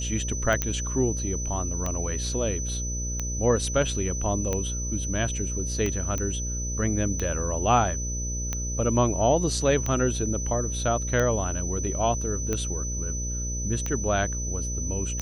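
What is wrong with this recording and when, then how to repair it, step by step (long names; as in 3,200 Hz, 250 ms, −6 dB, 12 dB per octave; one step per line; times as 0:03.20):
mains buzz 60 Hz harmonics 10 −31 dBFS
scratch tick 45 rpm −14 dBFS
whistle 6,000 Hz −32 dBFS
0:00.62: click −9 dBFS
0:06.18: click −16 dBFS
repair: click removal
notch filter 6,000 Hz, Q 30
hum removal 60 Hz, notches 10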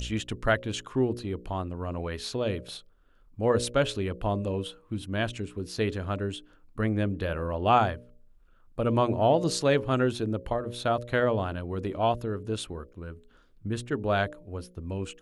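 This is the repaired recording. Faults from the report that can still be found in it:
none of them is left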